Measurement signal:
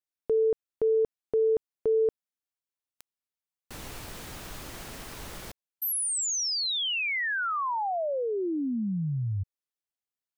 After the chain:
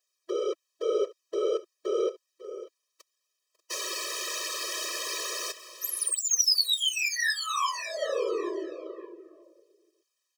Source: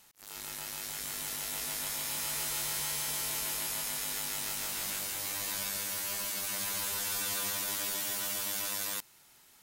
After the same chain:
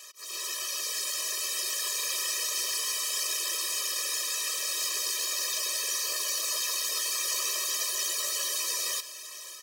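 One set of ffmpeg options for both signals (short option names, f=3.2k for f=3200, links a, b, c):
-filter_complex "[0:a]asplit=2[a][b];[b]highpass=f=720:p=1,volume=20dB,asoftclip=type=tanh:threshold=-20dB[c];[a][c]amix=inputs=2:normalize=0,lowpass=f=6.7k:p=1,volume=-6dB,asoftclip=type=tanh:threshold=-28dB,asplit=2[d][e];[e]aecho=0:1:547|590:0.158|0.141[f];[d][f]amix=inputs=2:normalize=0,afftfilt=real='hypot(re,im)*cos(2*PI*random(0))':imag='hypot(re,im)*sin(2*PI*random(1))':win_size=512:overlap=0.75,highpass=150,aeval=exprs='val(0)+0.000447*sin(2*PI*740*n/s)':c=same,equalizer=f=5.6k:w=1.2:g=9,afftfilt=real='re*eq(mod(floor(b*sr/1024/330),2),1)':imag='im*eq(mod(floor(b*sr/1024/330),2),1)':win_size=1024:overlap=0.75,volume=7dB"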